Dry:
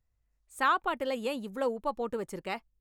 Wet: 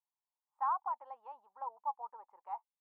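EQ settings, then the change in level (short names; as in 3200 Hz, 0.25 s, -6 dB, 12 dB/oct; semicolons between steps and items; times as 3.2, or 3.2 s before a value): Butterworth band-pass 900 Hz, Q 3.8; tilt +2 dB/oct; +1.0 dB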